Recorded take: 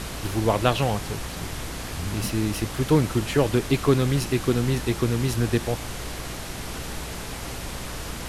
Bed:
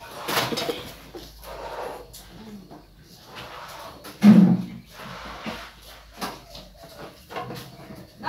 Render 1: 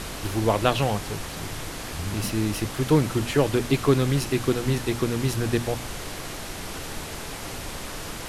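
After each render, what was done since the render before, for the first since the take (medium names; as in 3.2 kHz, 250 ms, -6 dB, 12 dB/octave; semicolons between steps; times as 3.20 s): hum notches 60/120/180/240 Hz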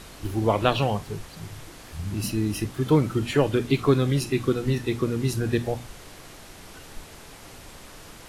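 noise print and reduce 10 dB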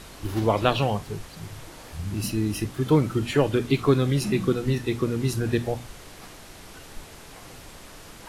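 add bed -18.5 dB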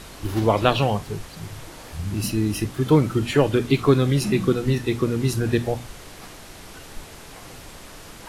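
trim +3 dB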